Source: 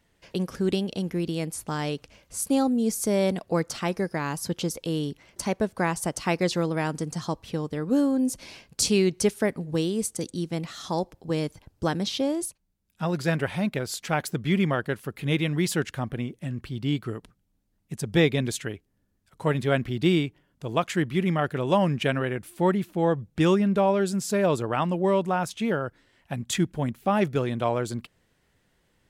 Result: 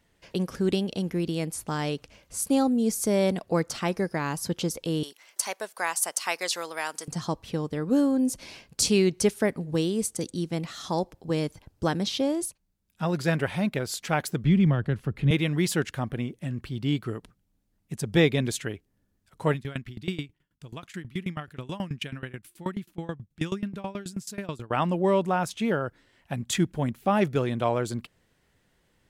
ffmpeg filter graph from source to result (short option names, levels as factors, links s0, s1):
-filter_complex "[0:a]asettb=1/sr,asplit=3[s0][s1][s2];[s0]atrim=end=5.034[s3];[s1]atrim=start=5.03:end=7.08,asetpts=PTS-STARTPTS,afade=t=in:d=0.004:c=qsin,afade=t=out:st=2.046:d=0.004:c=qsin,highpass=790,highshelf=f=6500:g=11[s4];[s2]atrim=start=7.076[s5];[s3][s4]acrossfade=d=0.004:c1=hsin:c2=qsin[s6];[s6][s5]acrossfade=d=0.004:c1=qsin:c2=hsin,asettb=1/sr,asplit=3[s7][s8][s9];[s7]atrim=end=14.444[s10];[s8]atrim=start=14.44:end=15.31,asetpts=PTS-STARTPTS,afade=t=in:d=0.004:c=qsin,afade=t=out:st=0.866:d=0.004:c=qsin,aemphasis=mode=reproduction:type=bsi,acrossover=split=200|3000[s11][s12][s13];[s12]acompressor=threshold=0.0355:ratio=3:attack=3.2:release=140:knee=2.83:detection=peak[s14];[s11][s14][s13]amix=inputs=3:normalize=0[s15];[s9]atrim=start=15.306[s16];[s10][s15]acrossfade=d=0.004:c1=hsin:c2=qsin[s17];[s17][s16]acrossfade=d=0.004:c1=qsin:c2=hsin,asettb=1/sr,asplit=3[s18][s19][s20];[s18]atrim=end=19.544[s21];[s19]atrim=start=19.54:end=24.71,asetpts=PTS-STARTPTS,afade=t=in:d=0.004:c=qsin,afade=t=out:st=5.166:d=0.004:c=qsin,equalizer=f=570:w=0.75:g=-10,aeval=exprs='val(0)*pow(10,-21*if(lt(mod(9.3*n/s,1),2*abs(9.3)/1000),1-mod(9.3*n/s,1)/(2*abs(9.3)/1000),(mod(9.3*n/s,1)-2*abs(9.3)/1000)/(1-2*abs(9.3)/1000))/20)':c=same[s22];[s20]atrim=start=24.706[s23];[s21][s22]acrossfade=d=0.004:c1=hsin:c2=qsin[s24];[s24][s23]acrossfade=d=0.004:c1=qsin:c2=hsin"